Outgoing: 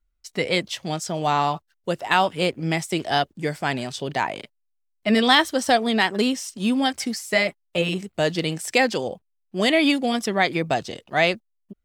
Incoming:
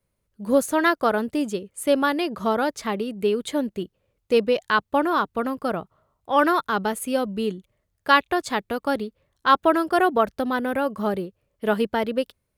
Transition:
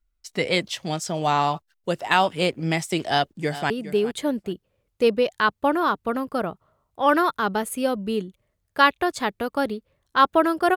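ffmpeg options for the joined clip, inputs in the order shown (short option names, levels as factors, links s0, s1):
-filter_complex "[0:a]apad=whole_dur=10.76,atrim=end=10.76,atrim=end=3.702[s0];[1:a]atrim=start=2.998:end=10.06[s1];[s0][s1]acrossfade=d=0.004:c1=hsin:c2=hsin,asplit=2[s2][s3];[s3]afade=t=in:st=3.09:d=0.01,afade=t=out:st=3.7:d=0.01,aecho=0:1:410|820:0.188365|0.0282547[s4];[s2][s4]amix=inputs=2:normalize=0"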